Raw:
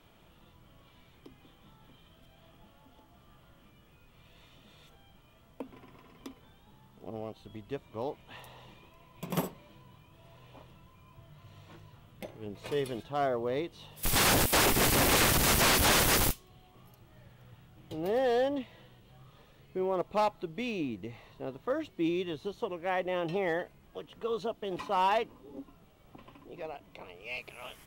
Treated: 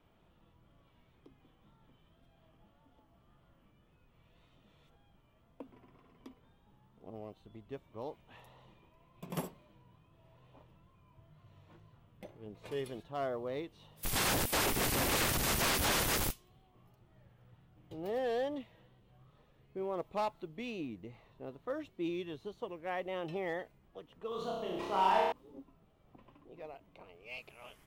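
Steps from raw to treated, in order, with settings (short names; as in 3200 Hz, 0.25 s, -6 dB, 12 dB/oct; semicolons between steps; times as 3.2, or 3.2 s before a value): 24.28–25.32 flutter echo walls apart 5.4 m, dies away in 1.2 s; wow and flutter 49 cents; mismatched tape noise reduction decoder only; gain -6.5 dB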